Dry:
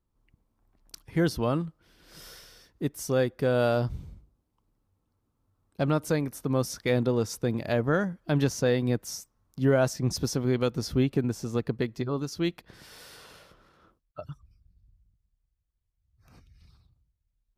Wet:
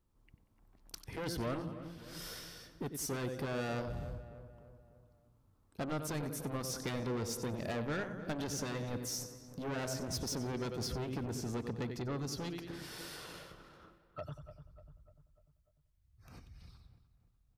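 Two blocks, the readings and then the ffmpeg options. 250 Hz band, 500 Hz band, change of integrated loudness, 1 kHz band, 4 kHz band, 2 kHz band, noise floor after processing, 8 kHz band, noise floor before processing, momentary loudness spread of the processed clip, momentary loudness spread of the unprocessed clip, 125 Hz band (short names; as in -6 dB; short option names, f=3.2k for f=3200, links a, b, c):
-11.5 dB, -13.0 dB, -12.0 dB, -8.0 dB, -5.5 dB, -9.0 dB, -72 dBFS, -3.5 dB, -78 dBFS, 17 LU, 18 LU, -11.5 dB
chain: -filter_complex "[0:a]asplit=2[a][b];[b]aecho=0:1:93|186|279|372:0.188|0.0753|0.0301|0.0121[c];[a][c]amix=inputs=2:normalize=0,acompressor=threshold=-36dB:ratio=1.5,asoftclip=type=tanh:threshold=-33.5dB,asplit=2[d][e];[e]adelay=297,lowpass=f=2.1k:p=1,volume=-13.5dB,asplit=2[f][g];[g]adelay=297,lowpass=f=2.1k:p=1,volume=0.53,asplit=2[h][i];[i]adelay=297,lowpass=f=2.1k:p=1,volume=0.53,asplit=2[j][k];[k]adelay=297,lowpass=f=2.1k:p=1,volume=0.53,asplit=2[l][m];[m]adelay=297,lowpass=f=2.1k:p=1,volume=0.53[n];[f][h][j][l][n]amix=inputs=5:normalize=0[o];[d][o]amix=inputs=2:normalize=0,afftfilt=real='re*lt(hypot(re,im),0.126)':imag='im*lt(hypot(re,im),0.126)':win_size=1024:overlap=0.75,volume=1.5dB"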